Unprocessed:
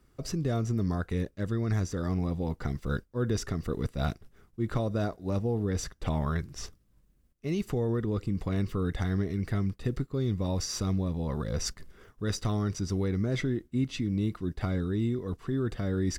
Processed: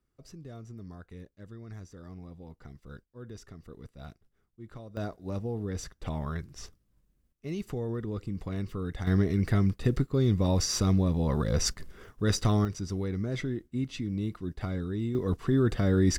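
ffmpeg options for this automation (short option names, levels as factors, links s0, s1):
-af "asetnsamples=n=441:p=0,asendcmd='4.97 volume volume -4.5dB;9.07 volume volume 4.5dB;12.65 volume volume -3dB;15.15 volume volume 5.5dB',volume=0.168"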